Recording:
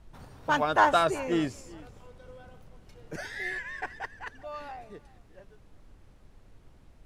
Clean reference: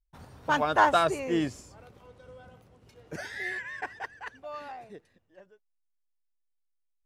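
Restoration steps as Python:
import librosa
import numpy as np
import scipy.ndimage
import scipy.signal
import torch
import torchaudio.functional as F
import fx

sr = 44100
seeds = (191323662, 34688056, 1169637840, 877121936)

y = fx.noise_reduce(x, sr, print_start_s=5.96, print_end_s=6.46, reduce_db=21.0)
y = fx.fix_echo_inverse(y, sr, delay_ms=378, level_db=-21.5)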